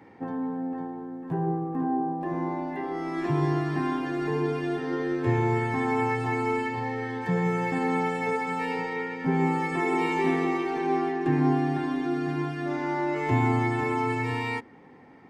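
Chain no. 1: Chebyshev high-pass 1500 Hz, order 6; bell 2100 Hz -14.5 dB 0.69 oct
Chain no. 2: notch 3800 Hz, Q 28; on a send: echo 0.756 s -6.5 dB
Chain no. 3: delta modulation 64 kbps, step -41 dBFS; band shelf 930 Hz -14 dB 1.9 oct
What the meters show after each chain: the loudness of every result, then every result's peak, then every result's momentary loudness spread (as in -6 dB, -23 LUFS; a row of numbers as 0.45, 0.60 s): -47.0, -26.5, -29.5 LUFS; -34.5, -10.5, -13.0 dBFS; 18, 6, 8 LU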